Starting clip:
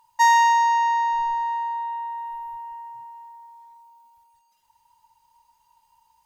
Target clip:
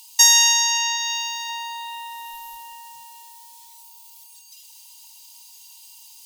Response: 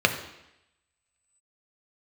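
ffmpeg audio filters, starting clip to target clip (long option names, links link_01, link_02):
-filter_complex "[0:a]asplit=3[link_01][link_02][link_03];[link_01]afade=type=out:start_time=0.96:duration=0.02[link_04];[link_02]highpass=frequency=1500:poles=1,afade=type=in:start_time=0.96:duration=0.02,afade=type=out:start_time=1.48:duration=0.02[link_05];[link_03]afade=type=in:start_time=1.48:duration=0.02[link_06];[link_04][link_05][link_06]amix=inputs=3:normalize=0,acompressor=threshold=-27dB:ratio=2,aexciter=amount=12.9:drive=9.8:freq=2400,volume=-5dB"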